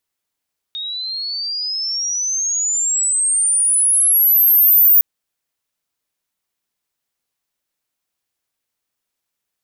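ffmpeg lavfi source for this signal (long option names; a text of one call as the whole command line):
ffmpeg -f lavfi -i "aevalsrc='pow(10,(-23.5+16.5*t/4.26)/20)*sin(2*PI*3700*4.26/log(15000/3700)*(exp(log(15000/3700)*t/4.26)-1))':duration=4.26:sample_rate=44100" out.wav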